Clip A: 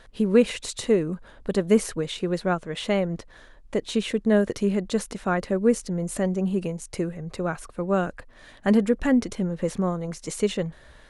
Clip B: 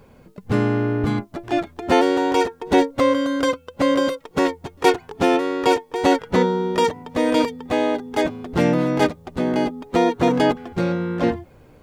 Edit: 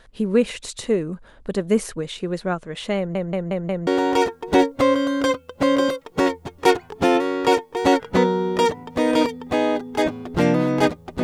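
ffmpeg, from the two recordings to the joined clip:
-filter_complex "[0:a]apad=whole_dur=11.23,atrim=end=11.23,asplit=5[s0][s1][s2][s3][s4];[s0]atrim=end=3.152[s5];[s1]atrim=start=2.968:end=3.152[s6];[s2]atrim=start=2.968:end=3.152[s7];[s3]atrim=start=2.968:end=3.152[s8];[s4]atrim=start=2.968:end=3.152[s9];[1:a]atrim=start=2.058:end=9.42[s10];[s5][s6]acrossfade=d=0.004:c1=hsin:c2=hsin[s11];[s11][s7]acrossfade=d=0.004:c1=hsin:c2=hsin[s12];[s12][s8]acrossfade=d=0.004:c1=hsin:c2=hsin[s13];[s13][s9]acrossfade=d=0.004:c1=hsin:c2=hsin[s14];[s14][s10]acrossfade=d=0.004:c1=hsin:c2=hsin"

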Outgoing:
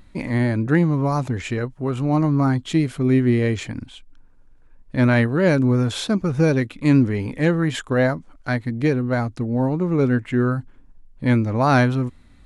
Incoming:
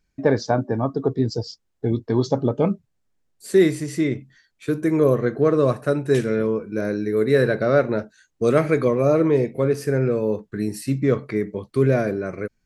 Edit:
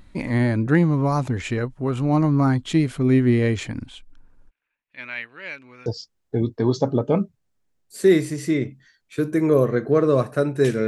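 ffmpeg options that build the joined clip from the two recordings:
-filter_complex "[0:a]asplit=3[s0][s1][s2];[s0]afade=t=out:st=4.49:d=0.02[s3];[s1]bandpass=f=2500:t=q:w=3.5:csg=0,afade=t=in:st=4.49:d=0.02,afade=t=out:st=5.86:d=0.02[s4];[s2]afade=t=in:st=5.86:d=0.02[s5];[s3][s4][s5]amix=inputs=3:normalize=0,apad=whole_dur=10.87,atrim=end=10.87,atrim=end=5.862[s6];[1:a]atrim=start=1.358:end=6.37[s7];[s6][s7]acrossfade=d=0.004:c1=hsin:c2=hsin"

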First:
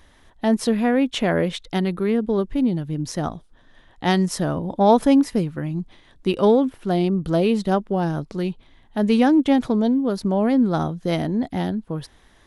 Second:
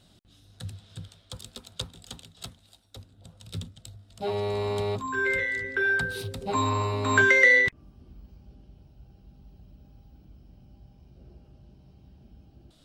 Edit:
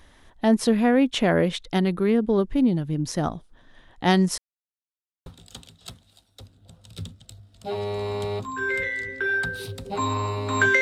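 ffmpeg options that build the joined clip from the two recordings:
-filter_complex "[0:a]apad=whole_dur=10.81,atrim=end=10.81,asplit=2[s0][s1];[s0]atrim=end=4.38,asetpts=PTS-STARTPTS,afade=t=out:st=4.376:d=0.004:c=hsin[s2];[s1]atrim=start=4.38:end=5.26,asetpts=PTS-STARTPTS,volume=0[s3];[1:a]atrim=start=1.82:end=7.37,asetpts=PTS-STARTPTS,afade=t=in:d=0.004:c=hsin[s4];[s2][s3][s4]concat=n=3:v=0:a=1"

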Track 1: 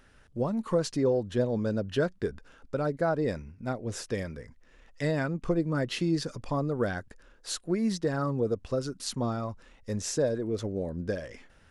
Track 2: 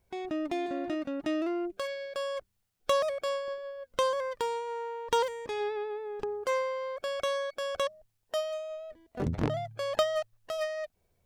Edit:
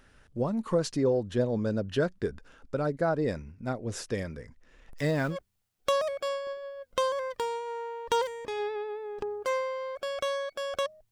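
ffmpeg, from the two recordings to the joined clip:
-filter_complex "[0:a]asettb=1/sr,asplit=3[s0][s1][s2];[s0]atrim=end=4.894[s3];[s1]atrim=start=4.89:end=5.37,asetpts=PTS-STARTPTS,afade=t=in:d=0.004:c=qsin,afade=t=out:st=0.476:d=0.004:c=qsin,aeval=exprs='val(0)+0.5*0.00944*sgn(val(0))':c=same[s4];[s2]atrim=start=5.366[s5];[s3][s4]acrossfade=d=0.004:c1=hsin:c2=qsin[s6];[s6][s5]acrossfade=d=0.004:c1=qsin:c2=hsin,apad=whole_dur=11.11,atrim=end=11.11,atrim=end=5.37,asetpts=PTS-STARTPTS[s7];[1:a]atrim=start=2.3:end=8.12,asetpts=PTS-STARTPTS[s8];[s7][s8]acrossfade=d=0.08:c1=tri:c2=tri"

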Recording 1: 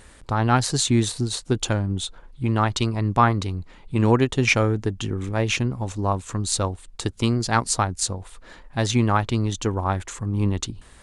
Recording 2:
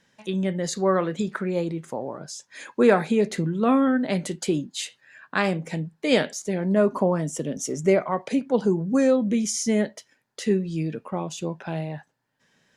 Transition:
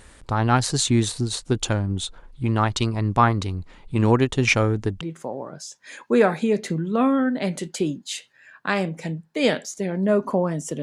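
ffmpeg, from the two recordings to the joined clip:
-filter_complex "[0:a]apad=whole_dur=10.82,atrim=end=10.82,atrim=end=5.012[s0];[1:a]atrim=start=1.688:end=7.5[s1];[s0][s1]acrossfade=d=0.004:c1=hsin:c2=hsin"

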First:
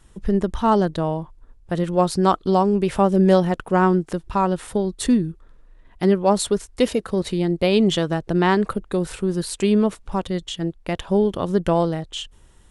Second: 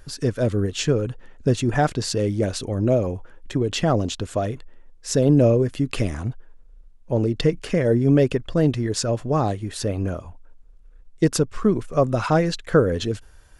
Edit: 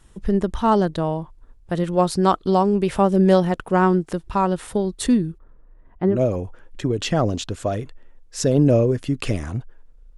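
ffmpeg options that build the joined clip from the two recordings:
-filter_complex "[0:a]asettb=1/sr,asplit=3[s0][s1][s2];[s0]atrim=end=5.384[s3];[s1]atrim=start=5.38:end=6.23,asetpts=PTS-STARTPTS,afade=t=in:d=0.004:c=qsin,afade=t=out:st=0.846:d=0.004:c=qsin,lowpass=1300[s4];[s2]atrim=start=6.226[s5];[s3][s4]acrossfade=d=0.004:c1=hsin:c2=qsin[s6];[s6][s5]acrossfade=d=0.004:c1=qsin:c2=hsin,apad=whole_dur=10.17,atrim=end=10.17,atrim=end=6.23,asetpts=PTS-STARTPTS[s7];[1:a]atrim=start=2.76:end=6.88,asetpts=PTS-STARTPTS[s8];[s7][s8]acrossfade=d=0.18:c1=tri:c2=tri"

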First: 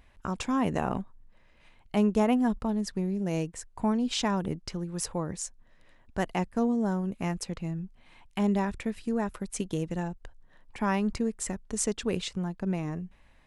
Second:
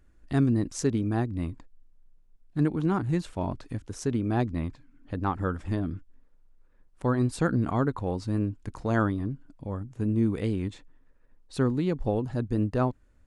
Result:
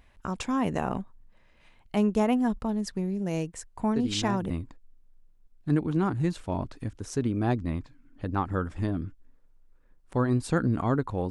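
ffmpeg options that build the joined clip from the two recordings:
-filter_complex "[1:a]asplit=2[s0][s1];[0:a]apad=whole_dur=11.3,atrim=end=11.3,atrim=end=4.502[s2];[s1]atrim=start=1.388:end=8.19[s3];[s0]atrim=start=0.85:end=1.39,asetpts=PTS-STARTPTS,volume=0.447,afade=t=in:d=0.004:c=hsin,afade=t=out:st=0.536:d=0.004:c=hsin,adelay=3960[s4];[s2][s3]acrossfade=d=0.004:c1=hsin:c2=hsin[s5];[s5][s4]amix=inputs=2:normalize=0"

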